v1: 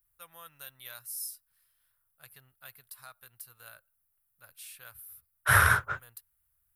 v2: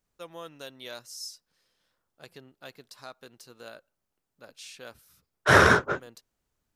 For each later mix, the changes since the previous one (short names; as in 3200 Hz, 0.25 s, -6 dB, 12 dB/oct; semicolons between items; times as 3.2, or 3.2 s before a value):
master: remove EQ curve 110 Hz 0 dB, 220 Hz -21 dB, 330 Hz -23 dB, 1400 Hz -2 dB, 6500 Hz -10 dB, 11000 Hz +15 dB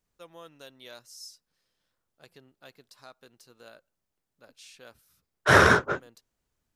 first voice -5.5 dB